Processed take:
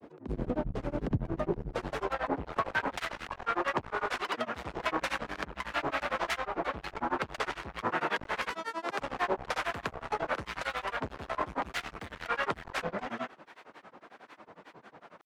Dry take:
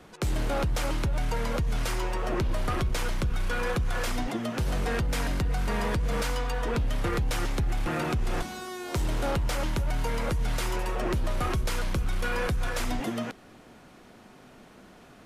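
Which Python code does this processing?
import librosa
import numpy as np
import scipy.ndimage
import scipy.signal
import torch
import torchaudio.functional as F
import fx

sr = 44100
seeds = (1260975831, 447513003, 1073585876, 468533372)

y = np.clip(10.0 ** (26.5 / 20.0) * x, -1.0, 1.0) / 10.0 ** (26.5 / 20.0)
y = fx.filter_sweep_bandpass(y, sr, from_hz=230.0, to_hz=1200.0, start_s=1.07, end_s=2.81, q=0.88)
y = fx.granulator(y, sr, seeds[0], grain_ms=100.0, per_s=11.0, spray_ms=100.0, spread_st=7)
y = F.gain(torch.from_numpy(y), 8.0).numpy()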